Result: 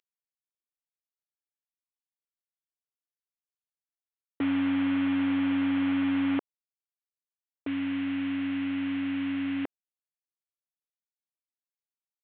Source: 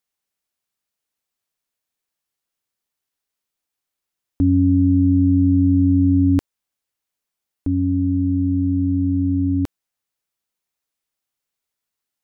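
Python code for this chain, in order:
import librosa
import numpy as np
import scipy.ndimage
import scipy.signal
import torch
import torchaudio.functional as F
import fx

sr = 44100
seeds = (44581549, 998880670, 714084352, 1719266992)

y = fx.cvsd(x, sr, bps=16000)
y = scipy.signal.sosfilt(scipy.signal.butter(2, 450.0, 'highpass', fs=sr, output='sos'), y)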